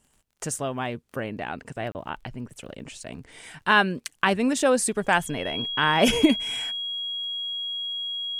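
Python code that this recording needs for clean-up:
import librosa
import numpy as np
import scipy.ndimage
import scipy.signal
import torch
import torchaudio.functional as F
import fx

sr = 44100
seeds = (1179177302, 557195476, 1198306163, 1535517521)

y = fx.fix_declick_ar(x, sr, threshold=6.5)
y = fx.notch(y, sr, hz=3300.0, q=30.0)
y = fx.fix_interpolate(y, sr, at_s=(1.92,), length_ms=29.0)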